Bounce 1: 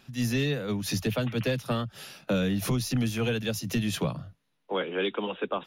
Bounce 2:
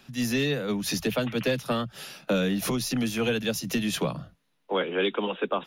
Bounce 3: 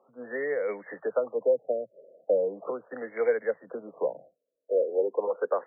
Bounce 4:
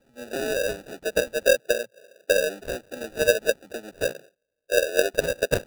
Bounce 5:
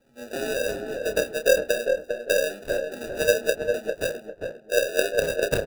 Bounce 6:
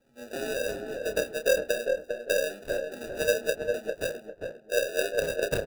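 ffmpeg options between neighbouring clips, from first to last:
ffmpeg -i in.wav -filter_complex "[0:a]equalizer=frequency=100:width=3.9:gain=-13,acrossover=split=190|1600[link_01][link_02][link_03];[link_01]alimiter=level_in=11dB:limit=-24dB:level=0:latency=1,volume=-11dB[link_04];[link_04][link_02][link_03]amix=inputs=3:normalize=0,volume=3dB" out.wav
ffmpeg -i in.wav -af "highpass=frequency=500:width_type=q:width=4.8,equalizer=frequency=2500:width_type=o:width=1.1:gain=13.5,afftfilt=real='re*lt(b*sr/1024,670*pow(2300/670,0.5+0.5*sin(2*PI*0.38*pts/sr)))':imag='im*lt(b*sr/1024,670*pow(2300/670,0.5+0.5*sin(2*PI*0.38*pts/sr)))':win_size=1024:overlap=0.75,volume=-8dB" out.wav
ffmpeg -i in.wav -filter_complex "[0:a]acrossover=split=200[link_01][link_02];[link_02]acrusher=samples=41:mix=1:aa=0.000001[link_03];[link_01][link_03]amix=inputs=2:normalize=0,aeval=exprs='0.2*(cos(1*acos(clip(val(0)/0.2,-1,1)))-cos(1*PI/2))+0.0224*(cos(3*acos(clip(val(0)/0.2,-1,1)))-cos(3*PI/2))+0.00282*(cos(4*acos(clip(val(0)/0.2,-1,1)))-cos(4*PI/2))':channel_layout=same,volume=6dB" out.wav
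ffmpeg -i in.wav -filter_complex "[0:a]asplit=2[link_01][link_02];[link_02]adelay=29,volume=-8dB[link_03];[link_01][link_03]amix=inputs=2:normalize=0,asplit=2[link_04][link_05];[link_05]adelay=401,lowpass=frequency=1200:poles=1,volume=-3.5dB,asplit=2[link_06][link_07];[link_07]adelay=401,lowpass=frequency=1200:poles=1,volume=0.33,asplit=2[link_08][link_09];[link_09]adelay=401,lowpass=frequency=1200:poles=1,volume=0.33,asplit=2[link_10][link_11];[link_11]adelay=401,lowpass=frequency=1200:poles=1,volume=0.33[link_12];[link_06][link_08][link_10][link_12]amix=inputs=4:normalize=0[link_13];[link_04][link_13]amix=inputs=2:normalize=0,volume=-1.5dB" out.wav
ffmpeg -i in.wav -af "asoftclip=type=hard:threshold=-13dB,volume=-4dB" out.wav

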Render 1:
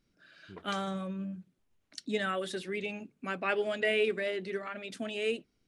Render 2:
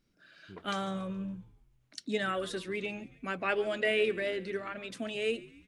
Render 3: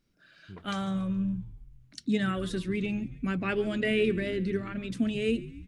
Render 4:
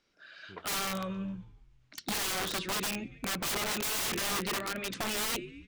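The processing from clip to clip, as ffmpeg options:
ffmpeg -i in.wav -filter_complex "[0:a]asplit=5[link_01][link_02][link_03][link_04][link_05];[link_02]adelay=140,afreqshift=-80,volume=-20dB[link_06];[link_03]adelay=280,afreqshift=-160,volume=-25.8dB[link_07];[link_04]adelay=420,afreqshift=-240,volume=-31.7dB[link_08];[link_05]adelay=560,afreqshift=-320,volume=-37.5dB[link_09];[link_01][link_06][link_07][link_08][link_09]amix=inputs=5:normalize=0" out.wav
ffmpeg -i in.wav -af "asubboost=boost=12:cutoff=200" out.wav
ffmpeg -i in.wav -filter_complex "[0:a]acrossover=split=400 7100:gain=0.141 1 0.0794[link_01][link_02][link_03];[link_01][link_02][link_03]amix=inputs=3:normalize=0,aeval=exprs='(mod(53.1*val(0)+1,2)-1)/53.1':channel_layout=same,volume=7dB" out.wav

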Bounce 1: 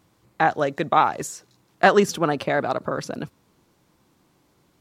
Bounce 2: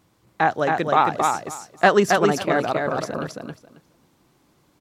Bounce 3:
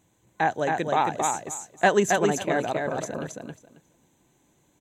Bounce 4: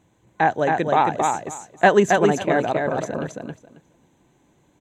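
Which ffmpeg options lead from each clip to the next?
ffmpeg -i in.wav -af "aecho=1:1:271|542|813:0.668|0.107|0.0171" out.wav
ffmpeg -i in.wav -af "superequalizer=10b=0.447:14b=0.355:15b=2.51,volume=-4dB" out.wav
ffmpeg -i in.wav -af "lowpass=frequency=2800:poles=1,volume=5.5dB" out.wav

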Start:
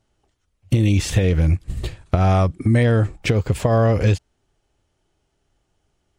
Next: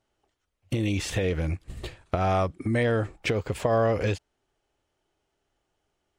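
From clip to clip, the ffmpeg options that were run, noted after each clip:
ffmpeg -i in.wav -af "bass=frequency=250:gain=-9,treble=frequency=4000:gain=-4,volume=-3.5dB" out.wav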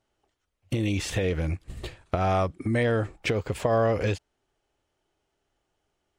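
ffmpeg -i in.wav -af anull out.wav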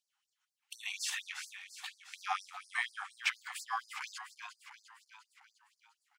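ffmpeg -i in.wav -filter_complex "[0:a]asplit=8[link_01][link_02][link_03][link_04][link_05][link_06][link_07][link_08];[link_02]adelay=351,afreqshift=-35,volume=-10.5dB[link_09];[link_03]adelay=702,afreqshift=-70,volume=-15.1dB[link_10];[link_04]adelay=1053,afreqshift=-105,volume=-19.7dB[link_11];[link_05]adelay=1404,afreqshift=-140,volume=-24.2dB[link_12];[link_06]adelay=1755,afreqshift=-175,volume=-28.8dB[link_13];[link_07]adelay=2106,afreqshift=-210,volume=-33.4dB[link_14];[link_08]adelay=2457,afreqshift=-245,volume=-38dB[link_15];[link_01][link_09][link_10][link_11][link_12][link_13][link_14][link_15]amix=inputs=8:normalize=0,afftfilt=real='re*gte(b*sr/1024,720*pow(4400/720,0.5+0.5*sin(2*PI*4.2*pts/sr)))':imag='im*gte(b*sr/1024,720*pow(4400/720,0.5+0.5*sin(2*PI*4.2*pts/sr)))':win_size=1024:overlap=0.75,volume=-2dB" out.wav

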